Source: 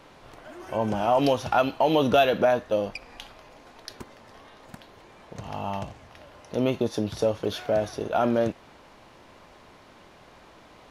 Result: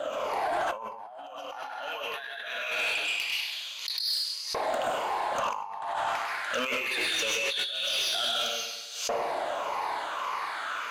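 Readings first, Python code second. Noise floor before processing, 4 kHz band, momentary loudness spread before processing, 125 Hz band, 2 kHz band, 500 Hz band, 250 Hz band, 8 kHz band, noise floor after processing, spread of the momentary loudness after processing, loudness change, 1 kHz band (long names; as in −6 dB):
−52 dBFS, +9.0 dB, 22 LU, −23.0 dB, +6.0 dB, −9.0 dB, −18.0 dB, +10.5 dB, −41 dBFS, 9 LU, −4.5 dB, −1.5 dB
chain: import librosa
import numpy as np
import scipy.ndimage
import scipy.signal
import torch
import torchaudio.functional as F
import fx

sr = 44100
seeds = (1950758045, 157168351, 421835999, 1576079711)

y = fx.spec_ripple(x, sr, per_octave=0.84, drift_hz=-1.7, depth_db=19)
y = fx.echo_thinned(y, sr, ms=99, feedback_pct=63, hz=300.0, wet_db=-8.5)
y = fx.rev_plate(y, sr, seeds[0], rt60_s=0.73, hf_ratio=0.95, predelay_ms=115, drr_db=-1.0)
y = fx.filter_lfo_highpass(y, sr, shape='saw_up', hz=0.22, low_hz=610.0, high_hz=5200.0, q=3.1)
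y = fx.low_shelf(y, sr, hz=480.0, db=9.5)
y = fx.notch(y, sr, hz=5500.0, q=7.8)
y = fx.over_compress(y, sr, threshold_db=-32.0, ratio=-1.0)
y = fx.low_shelf(y, sr, hz=130.0, db=7.5)
y = 10.0 ** (-22.5 / 20.0) * np.tanh(y / 10.0 ** (-22.5 / 20.0))
y = fx.pre_swell(y, sr, db_per_s=73.0)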